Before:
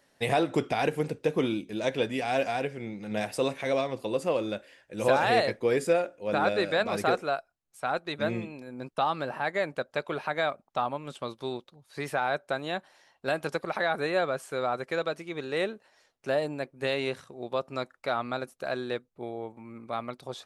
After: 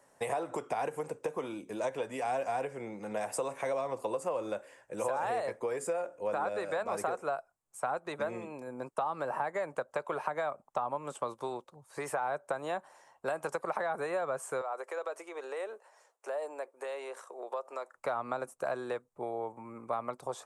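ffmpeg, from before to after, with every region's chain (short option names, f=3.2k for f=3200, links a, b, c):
-filter_complex "[0:a]asettb=1/sr,asplit=3[a][b][c];[a]atrim=end=14.614[d];[b]atrim=start=14.61:end=17.94,asetpts=PTS-STARTPTS,afade=t=in:d=0.004:c=qsin,afade=t=out:st=3.326:d=0.004:c=qsin,acompressor=threshold=-35dB:ratio=5:attack=3.2:release=140:knee=1:detection=peak,highpass=f=410:w=0.5412,highpass=f=410:w=1.3066[e];[c]atrim=start=17.936[f];[d][e]acrossfade=d=0.004:c1=hsin:c2=qsin[g];[g][f]acrossfade=d=0.004:c1=qsin:c2=hsin,acompressor=threshold=-30dB:ratio=6,equalizer=f=125:t=o:w=1:g=5,equalizer=f=500:t=o:w=1:g=6,equalizer=f=1k:t=o:w=1:g=11,equalizer=f=4k:t=o:w=1:g=-9,equalizer=f=8k:t=o:w=1:g=12,acrossover=split=220|510[h][i][j];[h]acompressor=threshold=-50dB:ratio=4[k];[i]acompressor=threshold=-36dB:ratio=4[l];[j]acompressor=threshold=-26dB:ratio=4[m];[k][l][m]amix=inputs=3:normalize=0,volume=-4.5dB"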